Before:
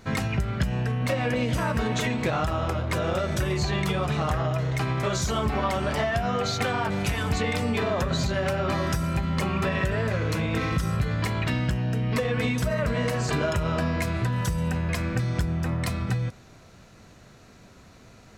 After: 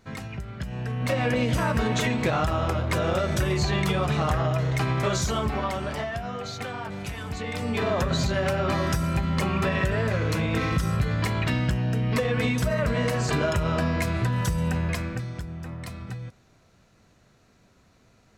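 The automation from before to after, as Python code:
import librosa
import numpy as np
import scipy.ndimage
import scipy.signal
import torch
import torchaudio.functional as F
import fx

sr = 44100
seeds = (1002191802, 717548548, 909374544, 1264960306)

y = fx.gain(x, sr, db=fx.line((0.57, -9.0), (1.18, 1.5), (5.11, 1.5), (6.38, -7.5), (7.37, -7.5), (7.88, 1.0), (14.85, 1.0), (15.39, -9.0)))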